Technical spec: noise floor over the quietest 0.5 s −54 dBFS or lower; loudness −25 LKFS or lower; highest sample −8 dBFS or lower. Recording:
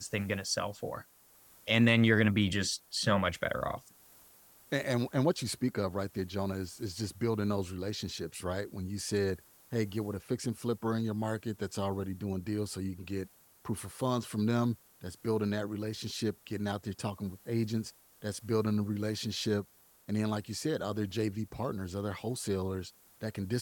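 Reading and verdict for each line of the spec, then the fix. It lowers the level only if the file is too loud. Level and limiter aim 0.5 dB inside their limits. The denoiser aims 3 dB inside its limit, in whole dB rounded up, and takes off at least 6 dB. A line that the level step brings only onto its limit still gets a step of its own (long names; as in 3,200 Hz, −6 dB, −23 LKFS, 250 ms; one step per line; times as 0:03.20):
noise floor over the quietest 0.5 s −61 dBFS: in spec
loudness −33.5 LKFS: in spec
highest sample −10.5 dBFS: in spec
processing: no processing needed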